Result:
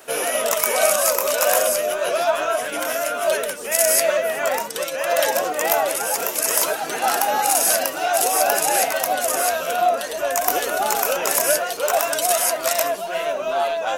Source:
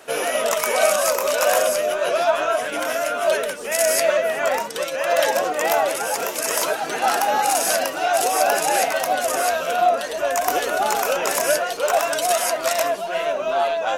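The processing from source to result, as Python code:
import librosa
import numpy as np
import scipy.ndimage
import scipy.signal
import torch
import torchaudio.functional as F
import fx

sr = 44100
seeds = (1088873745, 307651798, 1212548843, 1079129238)

y = fx.high_shelf(x, sr, hz=9800.0, db=12.0)
y = y * 10.0 ** (-1.0 / 20.0)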